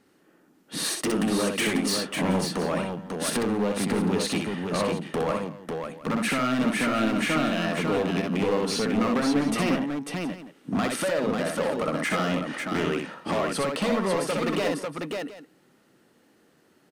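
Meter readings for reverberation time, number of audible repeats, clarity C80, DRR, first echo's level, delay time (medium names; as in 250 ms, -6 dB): no reverb, 3, no reverb, no reverb, -4.0 dB, 63 ms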